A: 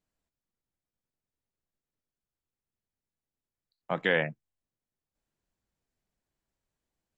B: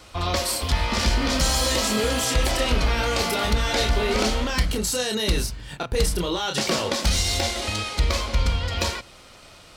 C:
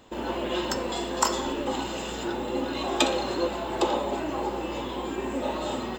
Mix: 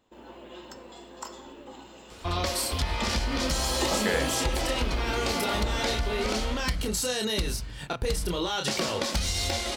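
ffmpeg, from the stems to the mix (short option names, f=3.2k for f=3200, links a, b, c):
-filter_complex "[0:a]volume=-3.5dB[a];[1:a]acompressor=threshold=-22dB:ratio=6,adelay=2100,volume=-2dB[b];[2:a]volume=-6.5dB,afade=t=in:st=3.34:d=0.33:silence=0.334965[c];[a][b][c]amix=inputs=3:normalize=0"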